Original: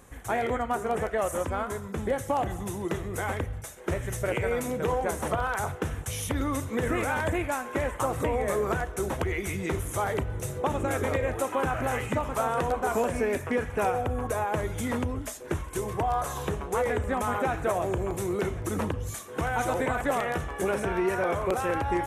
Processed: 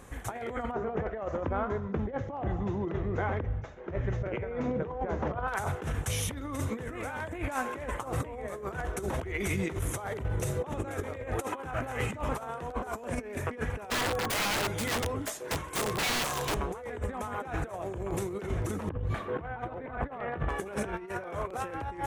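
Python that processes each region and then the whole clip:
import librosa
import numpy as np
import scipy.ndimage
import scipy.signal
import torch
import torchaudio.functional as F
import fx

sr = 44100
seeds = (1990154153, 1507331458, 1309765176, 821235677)

y = fx.chain(x, sr, fx.spacing_loss(db_at_10k=33),
    fx.resample_bad(factor=3, down='none', up='filtered'), at=(0.71, 5.48))
y = fx.chain(y, sr, fx.highpass(hz=120.0, slope=12),
    fx.notch(hz=250.0, q=6.4),
    fx.overflow_wrap(gain_db=27.0), at=(13.9, 16.57))
y = fx.chain(y, sr, fx.air_absorb(metres=480.0),
    fx.over_compress(threshold_db=-36.0, ratio=-0.5), at=(18.89, 20.49))
y = fx.high_shelf(y, sr, hz=8000.0, db=-6.5)
y = fx.over_compress(y, sr, threshold_db=-32.0, ratio=-0.5)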